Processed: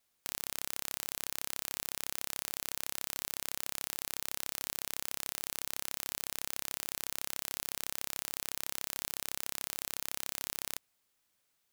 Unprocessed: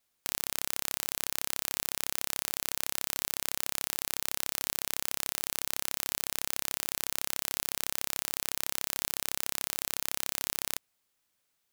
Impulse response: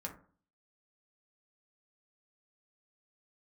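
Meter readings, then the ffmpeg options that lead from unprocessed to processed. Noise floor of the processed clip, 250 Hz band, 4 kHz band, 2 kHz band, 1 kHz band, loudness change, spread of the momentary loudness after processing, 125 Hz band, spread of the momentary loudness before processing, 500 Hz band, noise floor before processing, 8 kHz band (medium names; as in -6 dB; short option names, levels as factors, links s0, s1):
-78 dBFS, -5.0 dB, -5.0 dB, -5.0 dB, -5.0 dB, -5.0 dB, 0 LU, -5.0 dB, 0 LU, -5.0 dB, -78 dBFS, -5.0 dB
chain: -af "acontrast=85,volume=0.447"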